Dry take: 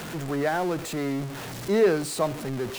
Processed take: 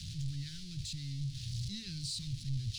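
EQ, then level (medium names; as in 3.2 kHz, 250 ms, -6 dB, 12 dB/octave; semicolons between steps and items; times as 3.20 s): elliptic band-stop 110–4200 Hz, stop band 80 dB; distance through air 160 m; peaking EQ 9.9 kHz +10.5 dB 0.23 oct; +6.0 dB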